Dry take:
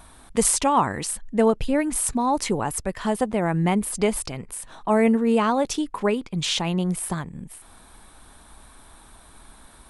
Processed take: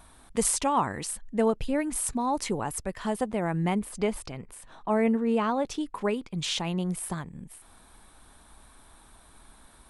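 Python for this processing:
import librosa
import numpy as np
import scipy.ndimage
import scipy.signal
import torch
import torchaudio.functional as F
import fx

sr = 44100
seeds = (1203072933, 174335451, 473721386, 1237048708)

y = fx.high_shelf(x, sr, hz=5700.0, db=-9.5, at=(3.79, 5.81))
y = y * 10.0 ** (-5.5 / 20.0)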